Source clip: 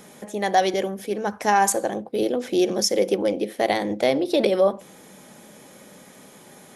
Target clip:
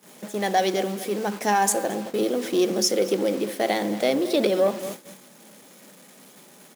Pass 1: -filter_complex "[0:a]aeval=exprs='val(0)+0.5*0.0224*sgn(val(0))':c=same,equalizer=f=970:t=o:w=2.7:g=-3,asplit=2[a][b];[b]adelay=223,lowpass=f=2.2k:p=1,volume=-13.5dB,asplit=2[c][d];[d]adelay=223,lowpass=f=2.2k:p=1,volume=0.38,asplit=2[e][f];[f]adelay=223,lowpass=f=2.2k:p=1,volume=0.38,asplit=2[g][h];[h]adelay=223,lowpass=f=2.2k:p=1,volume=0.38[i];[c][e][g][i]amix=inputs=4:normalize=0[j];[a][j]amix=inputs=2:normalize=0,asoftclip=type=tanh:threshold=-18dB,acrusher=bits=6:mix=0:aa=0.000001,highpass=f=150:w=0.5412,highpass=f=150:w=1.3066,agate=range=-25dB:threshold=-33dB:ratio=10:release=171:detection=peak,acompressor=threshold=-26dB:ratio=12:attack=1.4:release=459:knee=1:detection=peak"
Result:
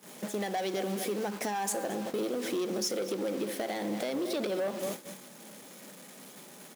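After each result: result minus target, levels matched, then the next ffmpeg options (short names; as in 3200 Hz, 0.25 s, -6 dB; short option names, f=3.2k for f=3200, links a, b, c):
compressor: peak gain reduction +11 dB; soft clip: distortion +14 dB
-filter_complex "[0:a]aeval=exprs='val(0)+0.5*0.0224*sgn(val(0))':c=same,equalizer=f=970:t=o:w=2.7:g=-3,asplit=2[a][b];[b]adelay=223,lowpass=f=2.2k:p=1,volume=-13.5dB,asplit=2[c][d];[d]adelay=223,lowpass=f=2.2k:p=1,volume=0.38,asplit=2[e][f];[f]adelay=223,lowpass=f=2.2k:p=1,volume=0.38,asplit=2[g][h];[h]adelay=223,lowpass=f=2.2k:p=1,volume=0.38[i];[c][e][g][i]amix=inputs=4:normalize=0[j];[a][j]amix=inputs=2:normalize=0,asoftclip=type=tanh:threshold=-18dB,acrusher=bits=6:mix=0:aa=0.000001,highpass=f=150:w=0.5412,highpass=f=150:w=1.3066,agate=range=-25dB:threshold=-33dB:ratio=10:release=171:detection=peak"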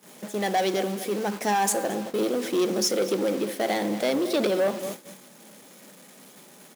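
soft clip: distortion +14 dB
-filter_complex "[0:a]aeval=exprs='val(0)+0.5*0.0224*sgn(val(0))':c=same,equalizer=f=970:t=o:w=2.7:g=-3,asplit=2[a][b];[b]adelay=223,lowpass=f=2.2k:p=1,volume=-13.5dB,asplit=2[c][d];[d]adelay=223,lowpass=f=2.2k:p=1,volume=0.38,asplit=2[e][f];[f]adelay=223,lowpass=f=2.2k:p=1,volume=0.38,asplit=2[g][h];[h]adelay=223,lowpass=f=2.2k:p=1,volume=0.38[i];[c][e][g][i]amix=inputs=4:normalize=0[j];[a][j]amix=inputs=2:normalize=0,asoftclip=type=tanh:threshold=-8dB,acrusher=bits=6:mix=0:aa=0.000001,highpass=f=150:w=0.5412,highpass=f=150:w=1.3066,agate=range=-25dB:threshold=-33dB:ratio=10:release=171:detection=peak"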